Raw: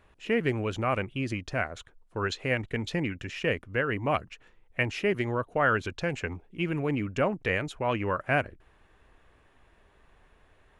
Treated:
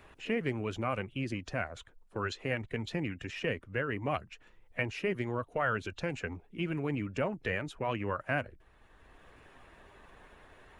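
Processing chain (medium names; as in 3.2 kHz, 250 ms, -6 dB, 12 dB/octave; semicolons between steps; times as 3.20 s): coarse spectral quantiser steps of 15 dB; three bands compressed up and down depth 40%; trim -5 dB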